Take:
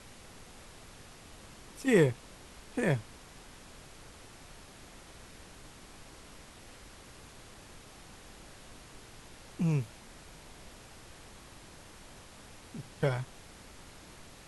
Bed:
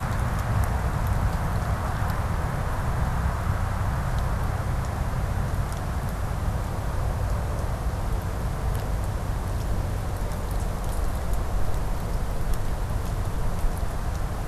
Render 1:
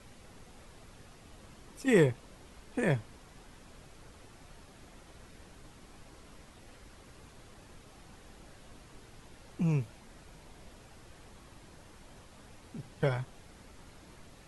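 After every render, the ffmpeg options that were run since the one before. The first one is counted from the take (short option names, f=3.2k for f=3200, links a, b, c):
-af "afftdn=nr=6:nf=-53"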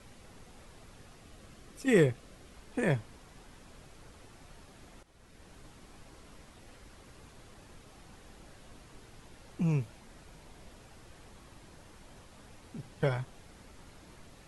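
-filter_complex "[0:a]asettb=1/sr,asplit=3[a][b][c];[a]atrim=end=1.254[d];[b]atrim=start=1.25:end=2.55,asetpts=PTS-STARTPTS,afade=t=in:d=0.004:c=qsin,afade=t=out:st=1.296:d=0.004:c=qsin,bandreject=f=920:w=5.6[e];[c]atrim=start=2.546[f];[d][e]acrossfade=d=0.004:c1=hsin:c2=qsin[g];[g][f]acrossfade=d=0.004:c1=qsin:c2=hsin,asplit=2[h][i];[h]atrim=end=5.03,asetpts=PTS-STARTPTS,afade=t=out:st=5.026:d=0.004:c=hsin:silence=0.223872[j];[i]atrim=start=5.03,asetpts=PTS-STARTPTS,afade=t=in:d=0.52:silence=0.223872[k];[j][k]concat=n=2:v=0:a=1"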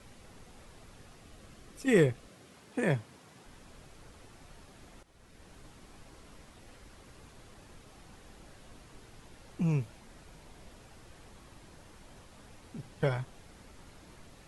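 -filter_complex "[0:a]asettb=1/sr,asplit=3[a][b][c];[a]atrim=end=2.284[d];[b]atrim=start=2.28:end=3.45,asetpts=PTS-STARTPTS,afade=t=in:d=0.004:c=qsin,afade=t=out:st=1.166:d=0.004:c=qsin,highpass=f=96:w=0.5412,highpass=f=96:w=1.3066[e];[c]atrim=start=3.446[f];[d][e]acrossfade=d=0.004:c1=hsin:c2=qsin[g];[g][f]acrossfade=d=0.004:c1=qsin:c2=hsin"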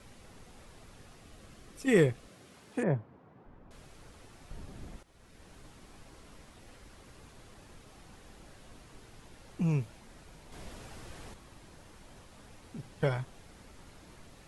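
-filter_complex "[0:a]asettb=1/sr,asplit=3[a][b][c];[a]atrim=end=2.834[d];[b]atrim=start=2.83:end=3.71,asetpts=PTS-STARTPTS,afade=t=in:d=0.004:c=qsin,afade=t=out:st=0.876:d=0.004:c=qsin,lowpass=1.1k[e];[c]atrim=start=3.706[f];[d][e]acrossfade=d=0.004:c1=hsin:c2=qsin[g];[g][f]acrossfade=d=0.004:c1=qsin:c2=hsin,asettb=1/sr,asplit=3[h][i][j];[h]atrim=end=4.514[k];[i]atrim=start=4.51:end=4.96,asetpts=PTS-STARTPTS,afade=t=in:d=0.004:c=qsin,afade=t=out:st=0.446:d=0.004:c=qsin,lowshelf=f=400:g=11[l];[j]atrim=start=4.956[m];[k][l]acrossfade=d=0.004:c1=hsin:c2=qsin[n];[n][m]acrossfade=d=0.004:c1=qsin:c2=hsin,asettb=1/sr,asplit=3[o][p][q];[o]atrim=end=10.524[r];[p]atrim=start=10.52:end=11.34,asetpts=PTS-STARTPTS,afade=t=in:d=0.004:c=qsin,afade=t=out:st=0.816:d=0.004:c=qsin,acontrast=63[s];[q]atrim=start=11.336[t];[r][s]acrossfade=d=0.004:c1=hsin:c2=qsin[u];[u][t]acrossfade=d=0.004:c1=qsin:c2=hsin"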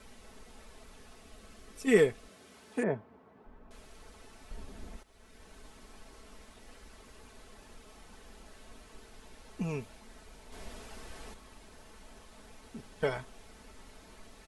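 -af "equalizer=f=150:t=o:w=0.69:g=-10,aecho=1:1:4.6:0.48"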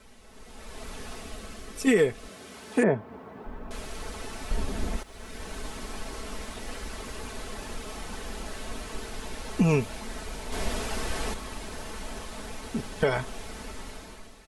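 -af "dynaudnorm=f=290:g=5:m=16dB,alimiter=limit=-12.5dB:level=0:latency=1:release=231"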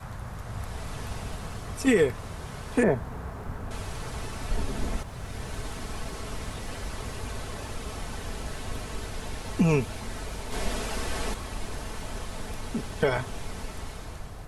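-filter_complex "[1:a]volume=-12.5dB[a];[0:a][a]amix=inputs=2:normalize=0"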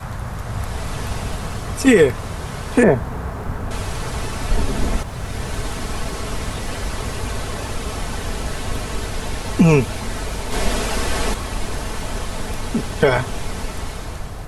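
-af "volume=10dB,alimiter=limit=-3dB:level=0:latency=1"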